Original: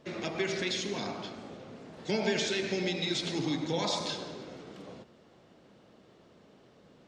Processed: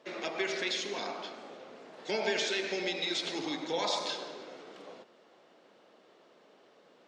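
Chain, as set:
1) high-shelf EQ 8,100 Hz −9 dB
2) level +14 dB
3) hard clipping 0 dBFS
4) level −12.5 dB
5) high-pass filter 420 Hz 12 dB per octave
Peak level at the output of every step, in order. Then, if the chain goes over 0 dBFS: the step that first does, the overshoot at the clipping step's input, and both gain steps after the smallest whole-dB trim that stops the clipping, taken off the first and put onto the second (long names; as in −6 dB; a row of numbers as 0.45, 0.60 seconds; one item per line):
−17.5, −3.5, −3.5, −16.0, −17.0 dBFS
no step passes full scale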